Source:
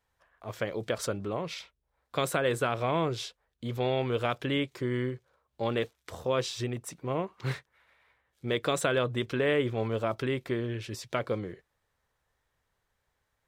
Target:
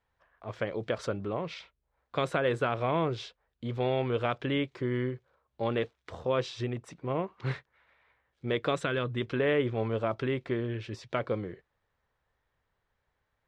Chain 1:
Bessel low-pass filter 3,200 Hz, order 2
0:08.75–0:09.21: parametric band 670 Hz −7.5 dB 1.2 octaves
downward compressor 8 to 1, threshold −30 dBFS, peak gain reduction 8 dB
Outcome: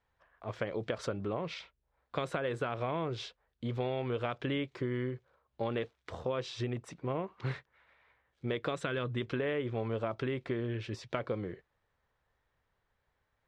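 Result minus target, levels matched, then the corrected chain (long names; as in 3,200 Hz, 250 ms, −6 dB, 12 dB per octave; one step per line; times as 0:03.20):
downward compressor: peak gain reduction +8 dB
Bessel low-pass filter 3,200 Hz, order 2
0:08.75–0:09.21: parametric band 670 Hz −7.5 dB 1.2 octaves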